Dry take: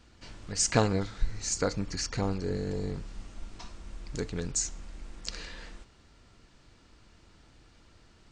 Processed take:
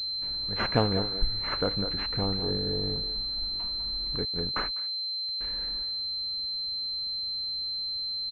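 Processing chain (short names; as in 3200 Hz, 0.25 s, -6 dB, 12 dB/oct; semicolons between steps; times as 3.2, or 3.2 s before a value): 4.25–5.41 gate -33 dBFS, range -44 dB; speakerphone echo 0.2 s, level -8 dB; pulse-width modulation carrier 4100 Hz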